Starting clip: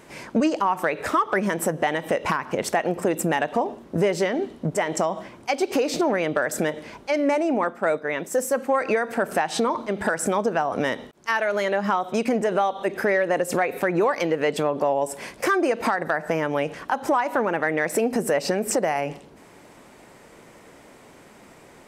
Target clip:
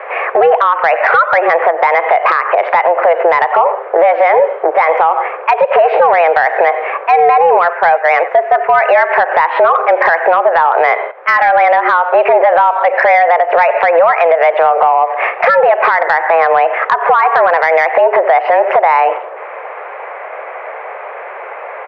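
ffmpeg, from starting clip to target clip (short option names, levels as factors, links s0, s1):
-filter_complex "[0:a]asplit=2[s0][s1];[s1]adelay=90,highpass=300,lowpass=3400,asoftclip=type=hard:threshold=0.0944,volume=0.126[s2];[s0][s2]amix=inputs=2:normalize=0,highpass=f=320:t=q:w=0.5412,highpass=f=320:t=q:w=1.307,lowpass=f=2100:t=q:w=0.5176,lowpass=f=2100:t=q:w=0.7071,lowpass=f=2100:t=q:w=1.932,afreqshift=170,acompressor=threshold=0.0447:ratio=4,asoftclip=type=tanh:threshold=0.119,alimiter=level_in=18.8:limit=0.891:release=50:level=0:latency=1,volume=0.891"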